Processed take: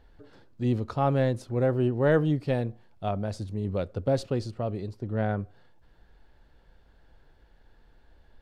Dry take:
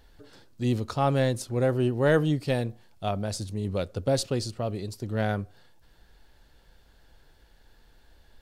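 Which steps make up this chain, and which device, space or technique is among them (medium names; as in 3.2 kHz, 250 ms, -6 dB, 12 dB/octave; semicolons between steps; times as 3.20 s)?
4.91–5.40 s: treble shelf 4 kHz -9.5 dB; through cloth (treble shelf 3.8 kHz -16.5 dB)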